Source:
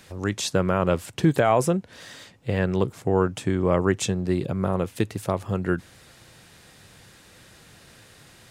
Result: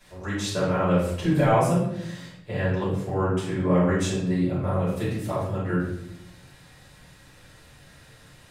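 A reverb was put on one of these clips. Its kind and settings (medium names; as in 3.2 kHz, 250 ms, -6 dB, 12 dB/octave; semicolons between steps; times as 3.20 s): simulated room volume 190 m³, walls mixed, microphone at 5.5 m; trim -16 dB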